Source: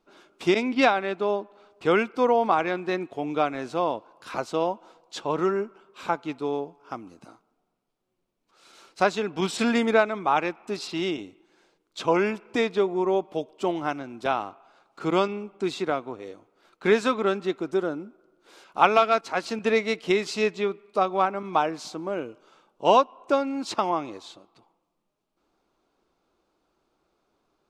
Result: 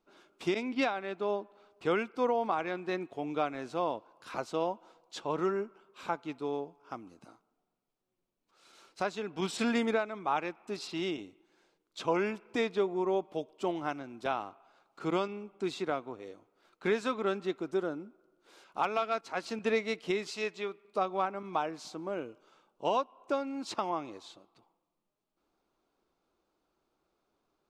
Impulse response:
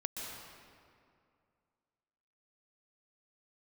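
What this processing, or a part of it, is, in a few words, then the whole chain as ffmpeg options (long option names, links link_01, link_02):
clipper into limiter: -filter_complex "[0:a]asoftclip=type=hard:threshold=-5dB,alimiter=limit=-12dB:level=0:latency=1:release=451,asettb=1/sr,asplit=3[link_01][link_02][link_03];[link_01]atrim=end=20.304[link_04];[link_02]atrim=start=20.3:end=20.85,asetpts=PTS-STARTPTS,afade=type=in:duration=0.004:curve=qsin,afade=type=out:start_time=0.546:duration=0.004:curve=qsin,lowshelf=frequency=380:gain=-9.5[link_05];[link_03]atrim=start=20.846[link_06];[link_04][link_05]acrossfade=duration=0.004:curve1=hsin:curve2=qsin[link_07];[link_07][link_06]acrossfade=duration=0.004:curve1=qsin:curve2=hsin,volume=-6.5dB"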